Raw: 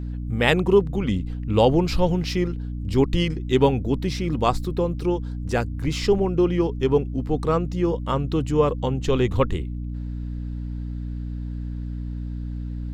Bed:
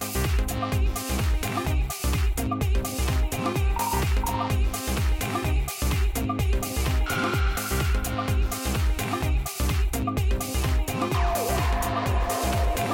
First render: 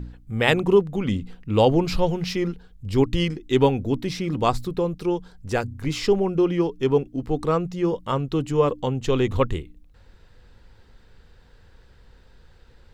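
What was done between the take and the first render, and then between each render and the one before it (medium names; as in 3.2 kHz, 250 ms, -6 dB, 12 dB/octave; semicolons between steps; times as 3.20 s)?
de-hum 60 Hz, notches 5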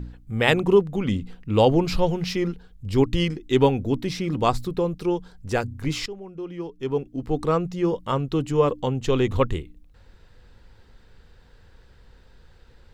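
6.06–7.35 s: fade in quadratic, from -17.5 dB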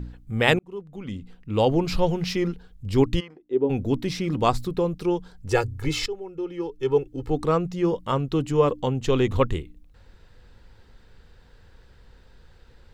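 0.59–2.11 s: fade in; 3.19–3.69 s: band-pass filter 1.2 kHz -> 300 Hz, Q 2.9; 5.48–7.30 s: comb 2.3 ms, depth 78%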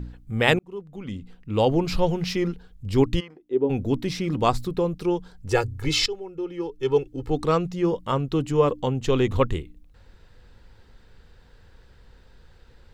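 5.72–7.71 s: dynamic bell 4.3 kHz, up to +8 dB, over -44 dBFS, Q 0.77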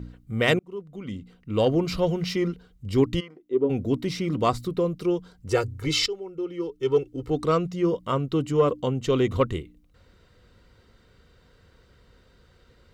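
comb of notches 850 Hz; saturation -7.5 dBFS, distortion -27 dB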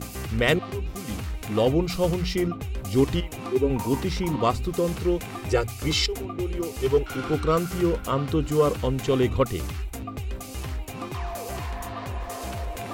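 add bed -8 dB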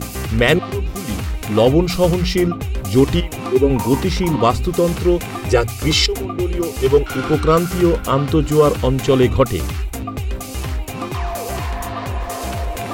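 trim +8.5 dB; peak limiter -3 dBFS, peak gain reduction 3 dB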